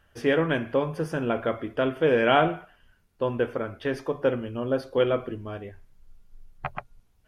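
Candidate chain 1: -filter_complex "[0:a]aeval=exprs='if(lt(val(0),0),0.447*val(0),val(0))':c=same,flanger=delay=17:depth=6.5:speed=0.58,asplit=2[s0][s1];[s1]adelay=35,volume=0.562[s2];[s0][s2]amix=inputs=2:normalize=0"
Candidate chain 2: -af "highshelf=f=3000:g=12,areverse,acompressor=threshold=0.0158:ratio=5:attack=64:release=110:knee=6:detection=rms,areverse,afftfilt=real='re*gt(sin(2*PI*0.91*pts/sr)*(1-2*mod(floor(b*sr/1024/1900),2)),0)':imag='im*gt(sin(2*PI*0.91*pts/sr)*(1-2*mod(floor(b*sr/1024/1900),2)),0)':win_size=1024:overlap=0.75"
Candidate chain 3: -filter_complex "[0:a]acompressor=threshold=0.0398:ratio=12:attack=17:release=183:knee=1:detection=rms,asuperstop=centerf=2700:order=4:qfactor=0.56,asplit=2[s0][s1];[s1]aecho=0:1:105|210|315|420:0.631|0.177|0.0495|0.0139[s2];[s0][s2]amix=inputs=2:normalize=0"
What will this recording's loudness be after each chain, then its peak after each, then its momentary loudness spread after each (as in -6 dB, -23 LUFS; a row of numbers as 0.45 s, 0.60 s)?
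-30.5 LUFS, -39.0 LUFS, -33.5 LUFS; -8.0 dBFS, -20.5 dBFS, -18.0 dBFS; 16 LU, 13 LU, 9 LU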